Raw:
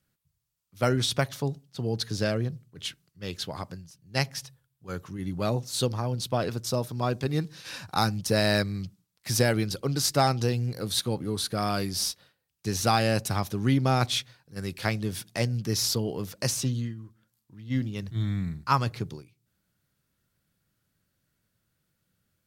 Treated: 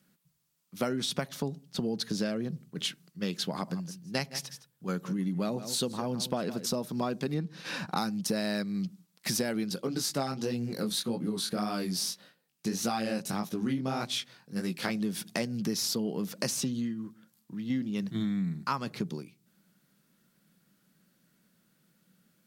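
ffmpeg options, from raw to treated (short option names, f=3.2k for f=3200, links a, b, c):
-filter_complex "[0:a]asettb=1/sr,asplit=3[a][b][c];[a]atrim=end=3.514[d];[b]atrim=start=3.51:end=6.79,asetpts=PTS-STARTPTS,afade=t=in:d=0.004:c=qsin,afade=t=out:st=3.276:d=0.004:c=qsin,aecho=1:1:163:0.15,atrim=end_sample=144648[e];[c]atrim=start=6.786[f];[d][e]acrossfade=d=0.004:c1=hsin:c2=qsin[g];[g][f]acrossfade=d=0.004:c1=qsin:c2=hsin,asettb=1/sr,asplit=3[h][i][j];[h]atrim=end=7.344[k];[i]atrim=start=7.34:end=7.97,asetpts=PTS-STARTPTS,afade=t=in:d=0.004:c=qsin,afade=t=out:st=0.626:d=0.004:c=qsin,highshelf=f=4.2k:g=-11.5[l];[j]atrim=start=7.966[m];[k][l]acrossfade=d=0.004:c1=hsin:c2=qsin[n];[n][m]acrossfade=d=0.004:c1=qsin:c2=hsin,asplit=3[o][p][q];[o]afade=t=out:st=9.76:d=0.02[r];[p]flanger=delay=16.5:depth=6.9:speed=1.7,afade=t=in:st=9.76:d=0.02,afade=t=out:st=14.89:d=0.02[s];[q]afade=t=in:st=14.89:d=0.02[t];[r][s][t]amix=inputs=3:normalize=0,lowshelf=f=130:t=q:w=3:g=-12.5,acompressor=threshold=-36dB:ratio=5,volume=6.5dB"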